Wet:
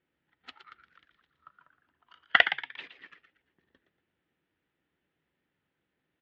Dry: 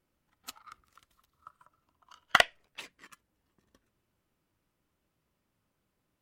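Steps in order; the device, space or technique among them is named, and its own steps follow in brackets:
frequency-shifting delay pedal into a guitar cabinet (echo with shifted repeats 117 ms, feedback 34%, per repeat +120 Hz, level −10 dB; loudspeaker in its box 92–3,500 Hz, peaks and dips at 110 Hz −9 dB, 210 Hz −5 dB, 610 Hz −5 dB, 1,100 Hz −8 dB, 1,800 Hz +7 dB, 3,400 Hz +3 dB)

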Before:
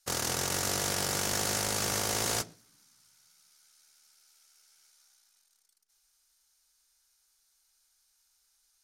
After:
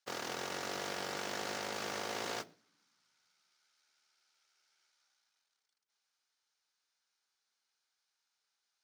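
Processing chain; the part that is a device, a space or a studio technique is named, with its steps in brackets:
early digital voice recorder (band-pass filter 240–3,800 Hz; one scale factor per block 5 bits)
level −5 dB

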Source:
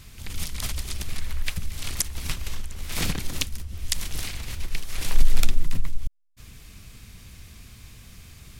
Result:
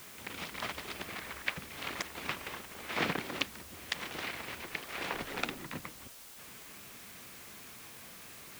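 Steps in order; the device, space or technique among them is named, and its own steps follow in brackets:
wax cylinder (band-pass filter 340–2,100 Hz; tape wow and flutter; white noise bed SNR 10 dB)
level +3.5 dB

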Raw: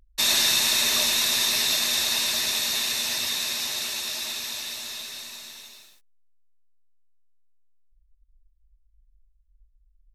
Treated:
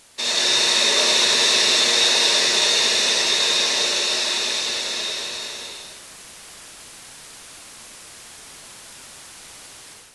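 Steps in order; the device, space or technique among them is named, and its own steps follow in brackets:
filmed off a television (band-pass filter 190–7,200 Hz; parametric band 470 Hz +11 dB 0.59 octaves; convolution reverb RT60 0.55 s, pre-delay 47 ms, DRR −1 dB; white noise bed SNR 20 dB; automatic gain control gain up to 10 dB; level −2.5 dB; AAC 96 kbit/s 24,000 Hz)

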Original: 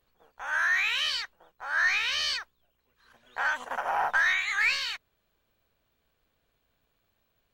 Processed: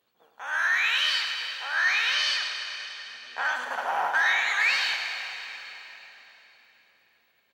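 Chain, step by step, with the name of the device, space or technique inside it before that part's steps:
PA in a hall (high-pass filter 190 Hz 12 dB per octave; parametric band 3,400 Hz +3.5 dB 0.73 octaves; single-tap delay 101 ms −8 dB; convolution reverb RT60 4.0 s, pre-delay 97 ms, DRR 5 dB)
0:02.13–0:03.44: low-pass filter 11,000 Hz 12 dB per octave

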